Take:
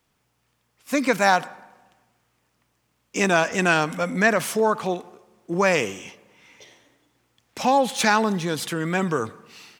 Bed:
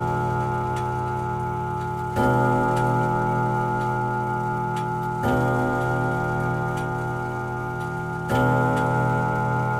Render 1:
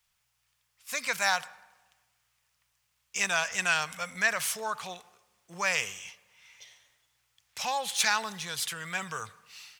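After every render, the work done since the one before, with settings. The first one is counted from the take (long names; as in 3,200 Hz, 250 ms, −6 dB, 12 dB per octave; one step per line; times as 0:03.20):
guitar amp tone stack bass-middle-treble 10-0-10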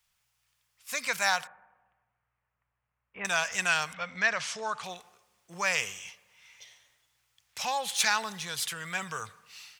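0:01.47–0:03.25: Gaussian smoothing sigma 4.7 samples
0:03.92–0:04.82: low-pass filter 3,900 Hz → 9,100 Hz 24 dB per octave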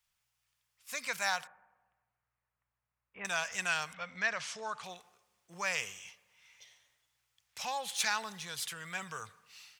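level −6 dB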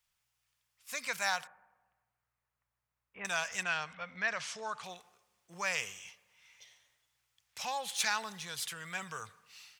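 0:03.63–0:04.28: high-frequency loss of the air 130 metres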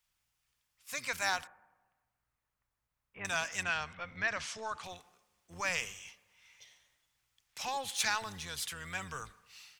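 sub-octave generator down 1 octave, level −1 dB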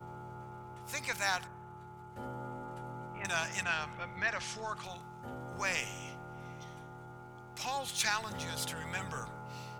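mix in bed −23 dB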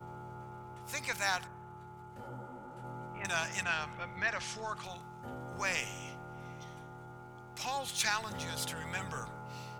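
0:02.16–0:02.83: micro pitch shift up and down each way 32 cents → 51 cents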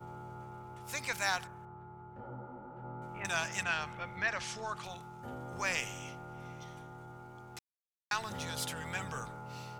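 0:01.65–0:03.02: low-pass filter 1,500 Hz
0:07.59–0:08.11: silence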